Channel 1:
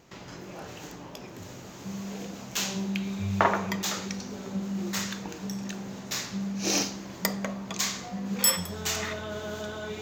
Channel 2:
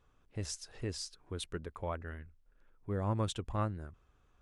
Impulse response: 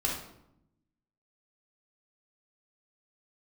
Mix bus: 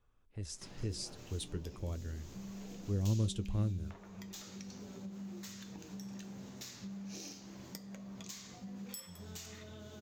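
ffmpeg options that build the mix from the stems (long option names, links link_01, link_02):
-filter_complex "[0:a]acompressor=threshold=-35dB:ratio=8,adelay=500,volume=-4.5dB[link_01];[1:a]dynaudnorm=framelen=260:gausssize=5:maxgain=7.5dB,volume=-3dB[link_02];[link_01][link_02]amix=inputs=2:normalize=0,lowshelf=frequency=76:gain=5.5,acrossover=split=430|3000[link_03][link_04][link_05];[link_04]acompressor=threshold=-55dB:ratio=4[link_06];[link_03][link_06][link_05]amix=inputs=3:normalize=0,flanger=delay=8.2:depth=2.5:regen=-62:speed=0.91:shape=triangular"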